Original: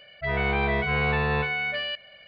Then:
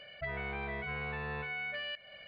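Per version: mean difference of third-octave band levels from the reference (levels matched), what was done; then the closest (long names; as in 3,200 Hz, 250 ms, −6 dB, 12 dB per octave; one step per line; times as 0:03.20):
3.0 dB: low-pass filter 4,000 Hz 6 dB per octave
dynamic equaliser 1,800 Hz, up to +4 dB, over −38 dBFS, Q 1.1
downward compressor 5 to 1, threshold −38 dBFS, peak gain reduction 16 dB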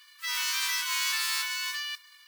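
22.5 dB: spectral envelope flattened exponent 0.1
elliptic high-pass filter 1,000 Hz, stop band 40 dB
level −4 dB
WMA 32 kbit/s 44,100 Hz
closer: first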